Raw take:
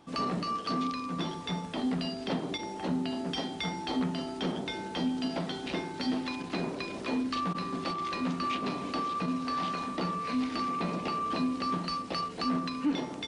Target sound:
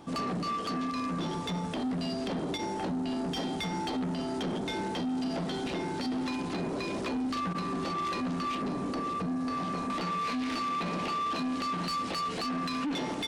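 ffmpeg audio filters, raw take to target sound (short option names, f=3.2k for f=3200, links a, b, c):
-af "asetnsamples=n=441:p=0,asendcmd='8.62 equalizer g -12.5;9.9 equalizer g 4.5',equalizer=f=2.7k:t=o:w=2.7:g=-4,alimiter=level_in=5.5dB:limit=-24dB:level=0:latency=1:release=75,volume=-5.5dB,asoftclip=type=tanh:threshold=-36.5dB,volume=8.5dB"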